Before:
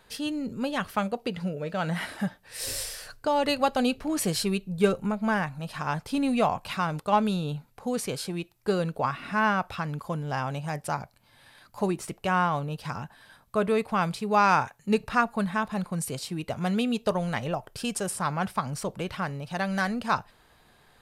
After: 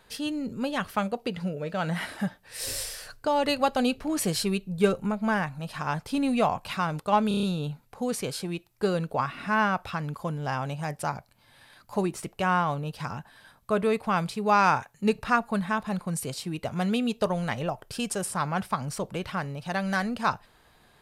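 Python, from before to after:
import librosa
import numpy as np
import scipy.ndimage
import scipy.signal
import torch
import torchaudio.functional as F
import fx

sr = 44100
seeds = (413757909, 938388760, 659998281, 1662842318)

y = fx.edit(x, sr, fx.stutter(start_s=7.28, slice_s=0.03, count=6), tone=tone)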